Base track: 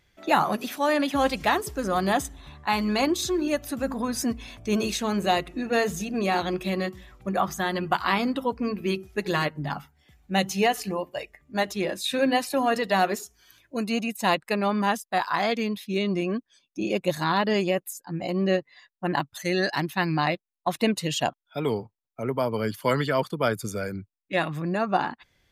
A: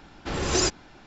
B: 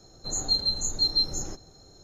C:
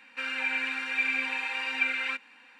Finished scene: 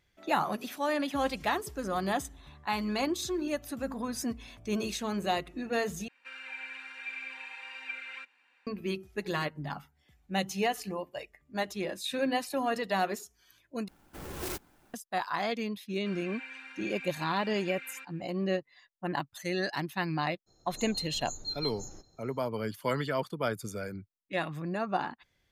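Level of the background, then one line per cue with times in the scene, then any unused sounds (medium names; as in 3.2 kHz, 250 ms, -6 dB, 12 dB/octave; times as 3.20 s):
base track -7 dB
6.08 s: replace with C -12 dB + Bessel high-pass 420 Hz
13.88 s: replace with A -13.5 dB + sampling jitter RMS 0.06 ms
15.88 s: add C -14.5 dB
20.46 s: add B -12.5 dB, fades 0.02 s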